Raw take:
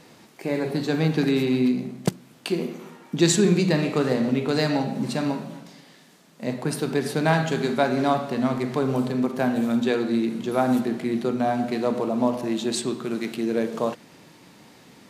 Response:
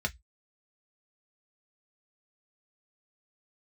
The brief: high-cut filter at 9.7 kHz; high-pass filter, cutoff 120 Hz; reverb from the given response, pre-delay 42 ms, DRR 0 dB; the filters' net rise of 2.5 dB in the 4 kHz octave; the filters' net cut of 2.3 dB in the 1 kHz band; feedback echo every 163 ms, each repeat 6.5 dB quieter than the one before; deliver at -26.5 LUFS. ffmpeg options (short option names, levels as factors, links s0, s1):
-filter_complex "[0:a]highpass=120,lowpass=9700,equalizer=f=1000:t=o:g=-3.5,equalizer=f=4000:t=o:g=3,aecho=1:1:163|326|489|652|815|978:0.473|0.222|0.105|0.0491|0.0231|0.0109,asplit=2[s0][s1];[1:a]atrim=start_sample=2205,adelay=42[s2];[s1][s2]afir=irnorm=-1:irlink=0,volume=0.531[s3];[s0][s3]amix=inputs=2:normalize=0,volume=0.501"